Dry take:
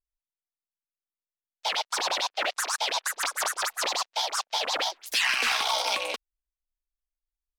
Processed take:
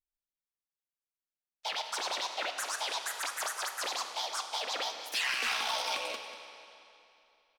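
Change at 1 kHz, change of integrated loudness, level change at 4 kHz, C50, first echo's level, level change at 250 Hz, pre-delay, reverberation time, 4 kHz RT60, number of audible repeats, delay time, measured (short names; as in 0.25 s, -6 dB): -6.5 dB, -6.5 dB, -6.5 dB, 6.5 dB, -14.5 dB, -6.0 dB, 14 ms, 2.9 s, 2.6 s, 1, 0.19 s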